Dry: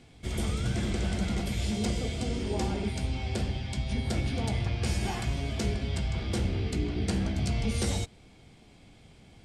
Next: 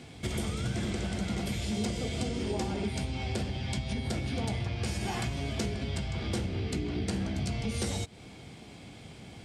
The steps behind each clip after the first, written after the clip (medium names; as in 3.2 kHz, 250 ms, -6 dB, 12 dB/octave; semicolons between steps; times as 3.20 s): compression 6:1, threshold -36 dBFS, peak gain reduction 12 dB; high-pass 77 Hz; trim +8 dB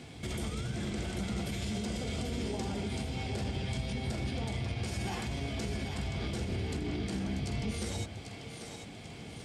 peak limiter -28 dBFS, peak gain reduction 9 dB; two-band feedback delay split 390 Hz, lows 154 ms, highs 792 ms, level -7 dB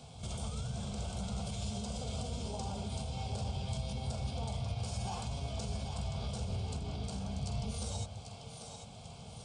static phaser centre 780 Hz, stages 4; resampled via 22.05 kHz; pre-echo 44 ms -14 dB